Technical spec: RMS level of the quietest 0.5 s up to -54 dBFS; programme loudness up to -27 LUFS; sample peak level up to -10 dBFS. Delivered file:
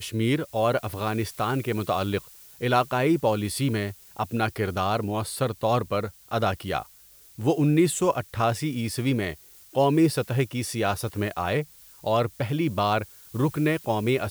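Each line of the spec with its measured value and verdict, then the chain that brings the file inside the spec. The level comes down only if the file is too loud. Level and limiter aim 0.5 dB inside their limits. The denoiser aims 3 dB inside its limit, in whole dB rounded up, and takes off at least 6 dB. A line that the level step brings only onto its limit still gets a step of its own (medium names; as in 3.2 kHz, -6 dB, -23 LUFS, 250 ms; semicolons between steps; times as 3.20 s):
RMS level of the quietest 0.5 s -53 dBFS: fail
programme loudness -26.0 LUFS: fail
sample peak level -8.0 dBFS: fail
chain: trim -1.5 dB; peak limiter -10.5 dBFS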